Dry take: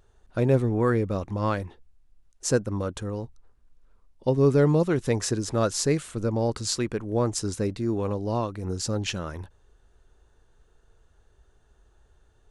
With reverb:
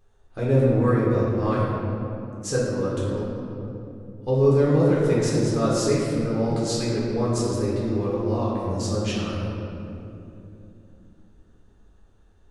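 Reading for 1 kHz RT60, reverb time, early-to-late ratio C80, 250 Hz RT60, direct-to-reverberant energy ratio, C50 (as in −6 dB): 2.4 s, 2.9 s, 0.5 dB, 4.3 s, −7.0 dB, −1.5 dB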